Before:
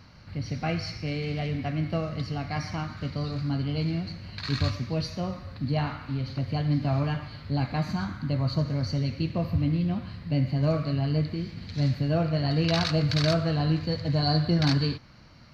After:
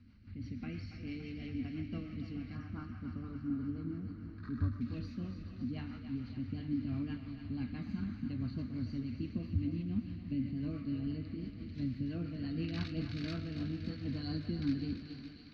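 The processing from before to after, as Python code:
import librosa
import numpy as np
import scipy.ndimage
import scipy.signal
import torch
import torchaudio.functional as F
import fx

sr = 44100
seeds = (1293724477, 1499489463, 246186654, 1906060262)

y = fx.reverse_delay_fb(x, sr, ms=217, feedback_pct=56, wet_db=-11.5)
y = fx.curve_eq(y, sr, hz=(100.0, 150.0, 230.0, 570.0, 870.0, 1300.0, 2500.0, 4700.0, 9100.0), db=(0, -13, 7, -19, -18, -11, -7, -14, -21))
y = fx.rotary_switch(y, sr, hz=6.0, then_hz=0.9, switch_at_s=12.64)
y = fx.high_shelf_res(y, sr, hz=1900.0, db=-12.0, q=3.0, at=(2.55, 4.81))
y = fx.echo_thinned(y, sr, ms=282, feedback_pct=76, hz=500.0, wet_db=-9.0)
y = F.gain(torch.from_numpy(y), -5.0).numpy()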